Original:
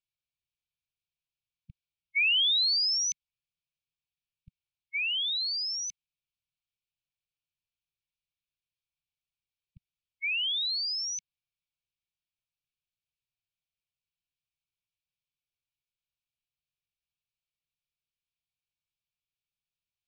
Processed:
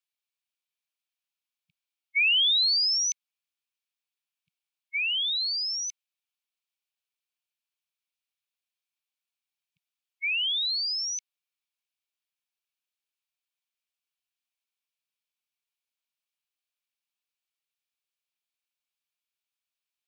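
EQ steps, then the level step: high-pass 770 Hz 12 dB/octave; +2.5 dB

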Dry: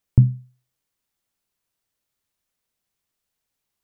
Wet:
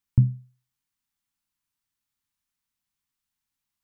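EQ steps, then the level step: high-order bell 500 Hz -11 dB 1.2 oct; -4.5 dB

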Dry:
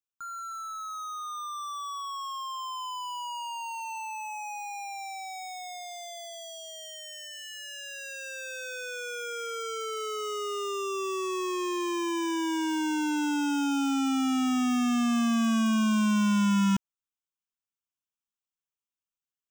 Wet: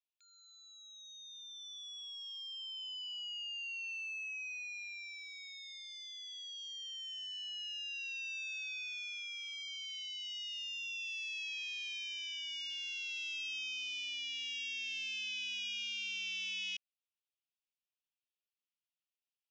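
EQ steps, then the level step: elliptic high-pass 2.5 kHz, stop band 50 dB; low-pass 6 kHz 24 dB/octave; distance through air 180 m; +5.0 dB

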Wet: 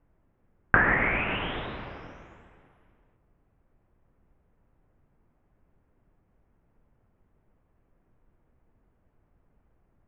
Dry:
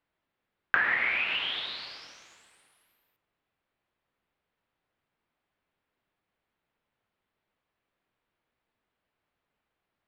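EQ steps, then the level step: boxcar filter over 10 samples; tilt EQ -4.5 dB/octave; +8.5 dB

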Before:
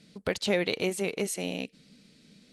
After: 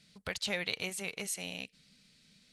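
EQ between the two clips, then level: peaking EQ 340 Hz -14.5 dB 2 oct; -2.0 dB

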